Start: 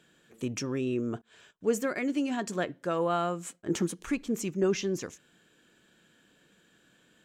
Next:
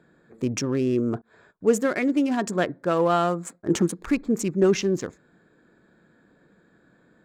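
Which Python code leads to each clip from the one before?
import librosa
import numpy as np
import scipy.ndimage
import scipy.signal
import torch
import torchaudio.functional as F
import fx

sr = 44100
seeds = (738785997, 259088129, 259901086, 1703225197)

y = fx.wiener(x, sr, points=15)
y = y * librosa.db_to_amplitude(7.5)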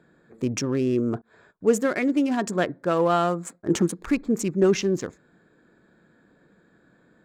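y = x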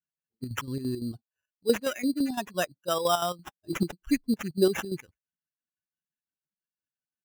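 y = fx.bin_expand(x, sr, power=2.0)
y = fx.chopper(y, sr, hz=5.9, depth_pct=60, duty_pct=60)
y = fx.sample_hold(y, sr, seeds[0], rate_hz=4400.0, jitter_pct=0)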